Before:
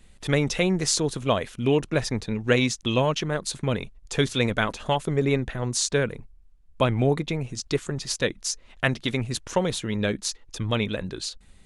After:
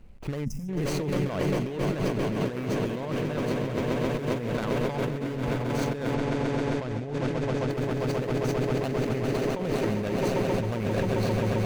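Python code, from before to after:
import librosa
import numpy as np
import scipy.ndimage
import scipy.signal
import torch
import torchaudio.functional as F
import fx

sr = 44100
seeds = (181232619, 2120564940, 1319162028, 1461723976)

y = scipy.signal.medfilt(x, 25)
y = fx.peak_eq(y, sr, hz=2000.0, db=4.5, octaves=0.79)
y = fx.echo_swell(y, sr, ms=133, loudest=8, wet_db=-11)
y = fx.over_compress(y, sr, threshold_db=-28.0, ratio=-1.0)
y = fx.spec_box(y, sr, start_s=0.45, length_s=0.24, low_hz=260.0, high_hz=4900.0, gain_db=-24)
y = fx.lowpass(y, sr, hz=8700.0, slope=12, at=(6.14, 7.7))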